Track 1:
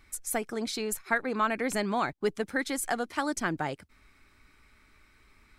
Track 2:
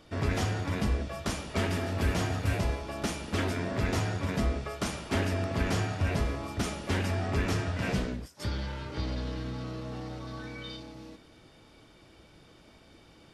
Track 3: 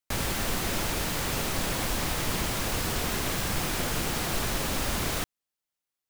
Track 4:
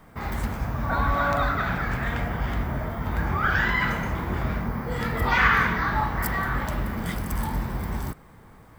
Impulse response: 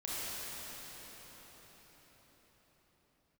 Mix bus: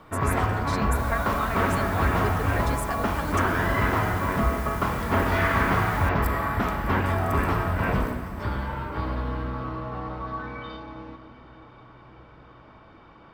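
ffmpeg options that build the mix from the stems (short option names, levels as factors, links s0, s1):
-filter_complex "[0:a]volume=0.596[s0];[1:a]lowpass=2300,equalizer=f=1100:t=o:w=0.86:g=13,bandreject=f=1200:w=23,volume=1.26,asplit=2[s1][s2];[s2]volume=0.188[s3];[2:a]highshelf=f=9100:g=11.5,adelay=850,volume=0.119[s4];[3:a]volume=0.316,asplit=2[s5][s6];[s6]volume=0.668[s7];[4:a]atrim=start_sample=2205[s8];[s3][s7]amix=inputs=2:normalize=0[s9];[s9][s8]afir=irnorm=-1:irlink=0[s10];[s0][s1][s4][s5][s10]amix=inputs=5:normalize=0"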